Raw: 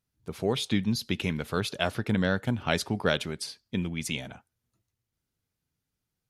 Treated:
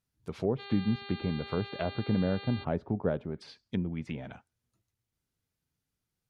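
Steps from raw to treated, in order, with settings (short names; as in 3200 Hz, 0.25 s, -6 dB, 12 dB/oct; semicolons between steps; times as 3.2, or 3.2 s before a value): treble ducked by the level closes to 690 Hz, closed at -26.5 dBFS; 0.58–2.63 buzz 400 Hz, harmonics 11, -44 dBFS -1 dB/oct; gain -1.5 dB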